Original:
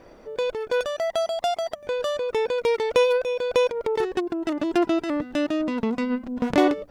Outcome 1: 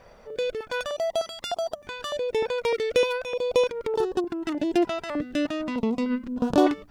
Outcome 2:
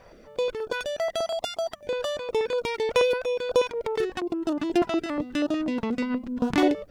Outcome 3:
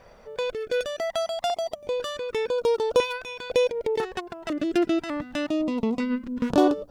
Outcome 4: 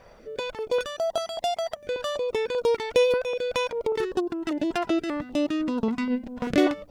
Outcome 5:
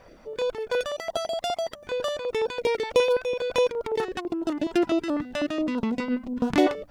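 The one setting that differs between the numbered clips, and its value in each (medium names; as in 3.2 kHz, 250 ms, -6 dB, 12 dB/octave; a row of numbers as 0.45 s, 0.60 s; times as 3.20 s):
step-sequenced notch, rate: 3.3 Hz, 8.3 Hz, 2 Hz, 5.1 Hz, 12 Hz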